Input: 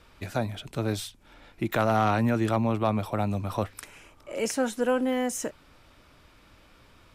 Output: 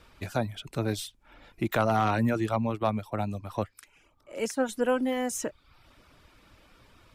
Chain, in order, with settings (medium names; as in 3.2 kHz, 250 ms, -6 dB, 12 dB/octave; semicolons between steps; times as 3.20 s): reverb removal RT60 0.59 s; 2.41–4.69 s: upward expansion 1.5:1, over -40 dBFS